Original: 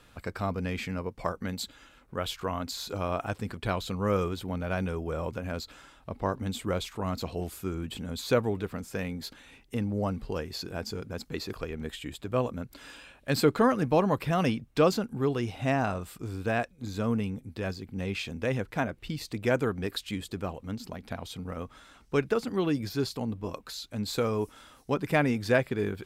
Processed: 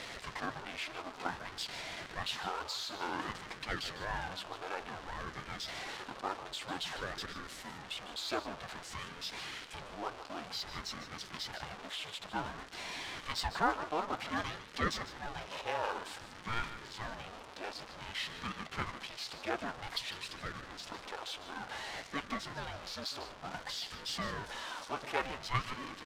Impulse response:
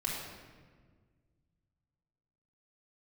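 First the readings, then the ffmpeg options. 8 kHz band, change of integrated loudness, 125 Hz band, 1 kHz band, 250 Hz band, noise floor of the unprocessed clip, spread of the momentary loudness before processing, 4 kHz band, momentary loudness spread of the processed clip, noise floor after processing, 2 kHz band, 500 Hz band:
−4.0 dB, −8.5 dB, −16.0 dB, −4.0 dB, −15.5 dB, −58 dBFS, 12 LU, 0.0 dB, 7 LU, −51 dBFS, −3.5 dB, −15.0 dB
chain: -filter_complex "[0:a]aeval=exprs='val(0)+0.5*0.0422*sgn(val(0))':channel_layout=same,highpass=1100,equalizer=frequency=1900:width_type=o:width=1.2:gain=-9,adynamicsmooth=sensitivity=1.5:basefreq=2900,flanger=delay=3.8:depth=7.6:regen=61:speed=1.9:shape=sinusoidal,asplit=2[link_01][link_02];[link_02]aecho=0:1:151:0.251[link_03];[link_01][link_03]amix=inputs=2:normalize=0,aeval=exprs='val(0)*sin(2*PI*430*n/s+430*0.65/0.54*sin(2*PI*0.54*n/s))':channel_layout=same,volume=7.5dB"

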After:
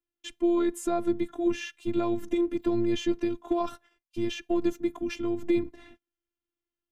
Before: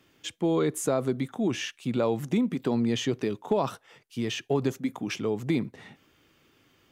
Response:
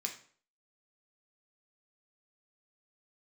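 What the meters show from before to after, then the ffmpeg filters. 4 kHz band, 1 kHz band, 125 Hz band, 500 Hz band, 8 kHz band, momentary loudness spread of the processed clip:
−4.5 dB, −1.0 dB, −10.0 dB, −1.0 dB, −6.5 dB, 7 LU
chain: -af "agate=range=-31dB:threshold=-50dB:ratio=16:detection=peak,bass=frequency=250:gain=13,treble=frequency=4000:gain=-3,afftfilt=real='hypot(re,im)*cos(PI*b)':imag='0':win_size=512:overlap=0.75"

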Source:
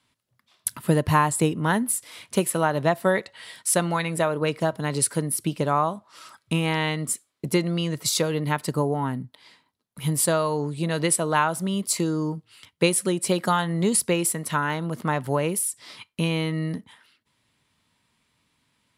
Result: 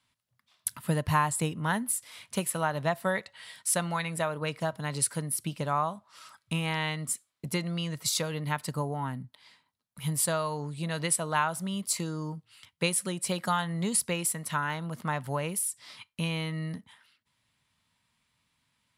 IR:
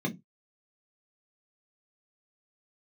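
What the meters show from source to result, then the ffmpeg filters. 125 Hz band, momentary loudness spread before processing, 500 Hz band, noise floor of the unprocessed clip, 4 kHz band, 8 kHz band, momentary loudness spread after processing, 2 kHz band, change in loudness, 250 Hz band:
−6.0 dB, 8 LU, −9.0 dB, −73 dBFS, −4.5 dB, −4.5 dB, 9 LU, −5.0 dB, −6.0 dB, −8.5 dB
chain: -af "equalizer=frequency=360:width=1.3:gain=-9,volume=-4.5dB"

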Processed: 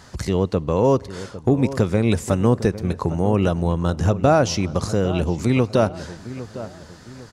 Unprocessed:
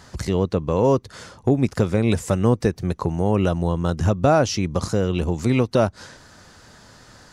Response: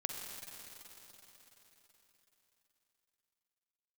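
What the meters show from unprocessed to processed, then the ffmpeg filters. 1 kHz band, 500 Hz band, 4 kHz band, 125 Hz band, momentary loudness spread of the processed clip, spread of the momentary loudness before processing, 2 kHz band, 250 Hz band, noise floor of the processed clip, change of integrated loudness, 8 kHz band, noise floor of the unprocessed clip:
+1.0 dB, +1.0 dB, +0.5 dB, +1.0 dB, 15 LU, 5 LU, +1.0 dB, +1.0 dB, −43 dBFS, +1.0 dB, +0.5 dB, −50 dBFS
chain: -filter_complex "[0:a]asplit=2[link_01][link_02];[link_02]adelay=805,lowpass=frequency=1700:poles=1,volume=-14dB,asplit=2[link_03][link_04];[link_04]adelay=805,lowpass=frequency=1700:poles=1,volume=0.41,asplit=2[link_05][link_06];[link_06]adelay=805,lowpass=frequency=1700:poles=1,volume=0.41,asplit=2[link_07][link_08];[link_08]adelay=805,lowpass=frequency=1700:poles=1,volume=0.41[link_09];[link_01][link_03][link_05][link_07][link_09]amix=inputs=5:normalize=0,asplit=2[link_10][link_11];[1:a]atrim=start_sample=2205,afade=type=out:start_time=0.43:duration=0.01,atrim=end_sample=19404[link_12];[link_11][link_12]afir=irnorm=-1:irlink=0,volume=-20.5dB[link_13];[link_10][link_13]amix=inputs=2:normalize=0"

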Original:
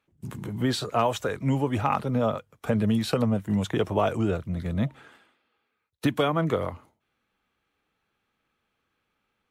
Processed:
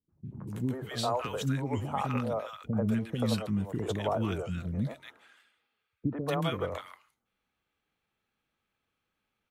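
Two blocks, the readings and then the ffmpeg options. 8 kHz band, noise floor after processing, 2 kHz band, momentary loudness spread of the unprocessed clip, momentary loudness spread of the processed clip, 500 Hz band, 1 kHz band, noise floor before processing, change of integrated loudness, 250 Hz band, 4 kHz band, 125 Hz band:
−4.5 dB, −84 dBFS, −6.5 dB, 6 LU, 10 LU, −6.5 dB, −6.5 dB, −78 dBFS, −6.0 dB, −6.0 dB, −4.5 dB, −4.5 dB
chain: -filter_complex "[0:a]acrossover=split=370|1300[link_01][link_02][link_03];[link_02]adelay=90[link_04];[link_03]adelay=250[link_05];[link_01][link_04][link_05]amix=inputs=3:normalize=0,volume=-4.5dB"

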